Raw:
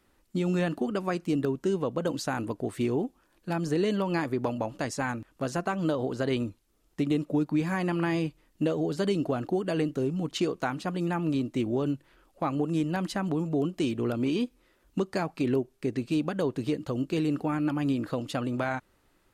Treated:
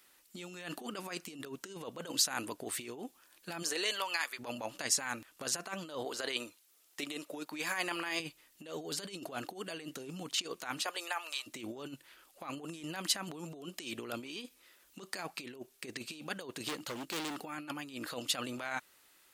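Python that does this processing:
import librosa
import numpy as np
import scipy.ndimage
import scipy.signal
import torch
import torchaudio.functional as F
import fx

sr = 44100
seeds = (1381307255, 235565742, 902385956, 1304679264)

y = fx.highpass(x, sr, hz=fx.line((3.62, 370.0), (4.38, 1400.0)), slope=12, at=(3.62, 4.38), fade=0.02)
y = fx.bass_treble(y, sr, bass_db=-14, treble_db=0, at=(6.05, 8.2))
y = fx.highpass(y, sr, hz=fx.line((10.82, 380.0), (11.46, 930.0)), slope=24, at=(10.82, 11.46), fade=0.02)
y = fx.clip_hard(y, sr, threshold_db=-31.5, at=(16.68, 17.41))
y = fx.peak_eq(y, sr, hz=2700.0, db=6.0, octaves=2.5)
y = fx.over_compress(y, sr, threshold_db=-30.0, ratio=-0.5)
y = fx.riaa(y, sr, side='recording')
y = y * librosa.db_to_amplitude(-6.5)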